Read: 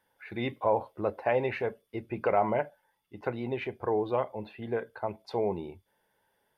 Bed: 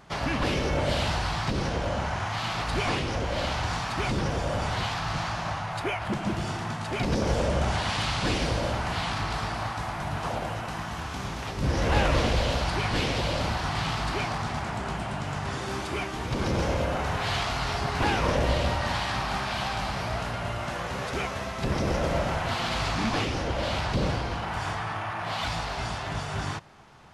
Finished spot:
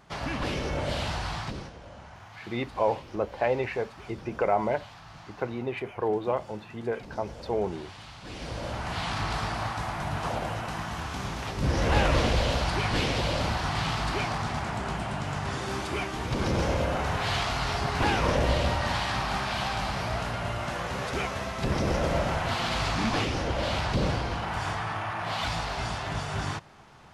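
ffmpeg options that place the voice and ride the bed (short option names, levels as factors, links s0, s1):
-filter_complex "[0:a]adelay=2150,volume=1.12[s0];[1:a]volume=4.73,afade=t=out:st=1.36:d=0.36:silence=0.211349,afade=t=in:st=8.24:d=1.03:silence=0.133352[s1];[s0][s1]amix=inputs=2:normalize=0"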